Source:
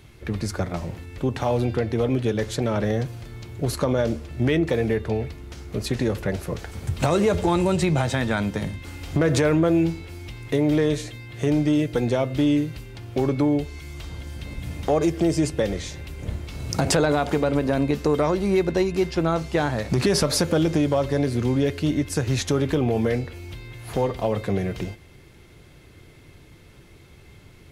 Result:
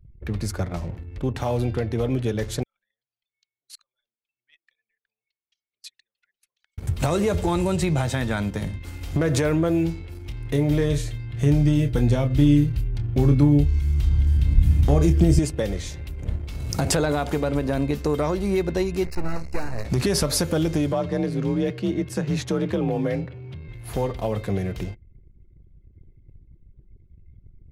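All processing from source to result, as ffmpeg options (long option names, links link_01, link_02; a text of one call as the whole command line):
ffmpeg -i in.wav -filter_complex "[0:a]asettb=1/sr,asplit=3[link_01][link_02][link_03];[link_01]atrim=end=2.634[link_04];[link_02]atrim=start=2.63:end=6.78,asetpts=PTS-STARTPTS,afade=type=in:duration=0.004:curve=qsin,afade=type=out:start_time=4.146:duration=0.004:curve=qsin,aemphasis=mode=reproduction:type=cd,acompressor=threshold=-31dB:ratio=3:attack=3.2:release=140:knee=1:detection=peak,asuperpass=centerf=5500:order=4:qfactor=0.7[link_05];[link_03]atrim=start=6.776[link_06];[link_04][link_05]acrossfade=duration=0.004:curve1=hsin:curve2=qsin[link_07];[link_07][link_06]acrossfade=duration=0.004:curve1=qsin:curve2=hsin,asettb=1/sr,asplit=3[link_08][link_09][link_10];[link_08]atrim=end=10.094[link_11];[link_09]atrim=start=10.09:end=15.39,asetpts=PTS-STARTPTS,afade=type=in:duration=0.004:curve=qsin,afade=type=out:start_time=5.296:duration=0.004:curve=qsin,asplit=2[link_12][link_13];[link_13]adelay=28,volume=-8.5dB[link_14];[link_12][link_14]amix=inputs=2:normalize=0,atrim=end_sample=233730,asubboost=boost=4.5:cutoff=240[link_15];[link_10]atrim=start=15.386[link_16];[link_11][link_15]acrossfade=duration=0.004:curve1=hsin:curve2=qsin[link_17];[link_17][link_16]acrossfade=duration=0.004:curve1=qsin:curve2=hsin,asettb=1/sr,asplit=3[link_18][link_19][link_20];[link_18]atrim=end=19.054[link_21];[link_19]atrim=start=19.05:end=19.85,asetpts=PTS-STARTPTS,afade=type=in:duration=0.004:curve=qsin,afade=type=out:start_time=0.796:duration=0.004:curve=qsin,aeval=exprs='max(val(0),0)':channel_layout=same,asuperstop=centerf=3300:order=20:qfactor=3.4[link_22];[link_20]atrim=start=19.846[link_23];[link_21][link_22]acrossfade=duration=0.004:curve1=hsin:curve2=qsin[link_24];[link_24][link_23]acrossfade=duration=0.004:curve1=qsin:curve2=hsin,asettb=1/sr,asplit=3[link_25][link_26][link_27];[link_25]atrim=end=20.924[link_28];[link_26]atrim=start=20.92:end=23.68,asetpts=PTS-STARTPTS,afade=type=in:duration=0.004:curve=qsin,afade=type=out:start_time=2.756:duration=0.004:curve=qsin,highshelf=frequency=5700:gain=-11.5,afreqshift=38[link_29];[link_27]atrim=start=23.676[link_30];[link_28][link_29]acrossfade=duration=0.004:curve1=hsin:curve2=qsin[link_31];[link_31][link_30]acrossfade=duration=0.004:curve1=qsin:curve2=hsin,highshelf=frequency=10000:gain=10.5,anlmdn=0.251,lowshelf=frequency=77:gain=11.5,volume=-3dB" out.wav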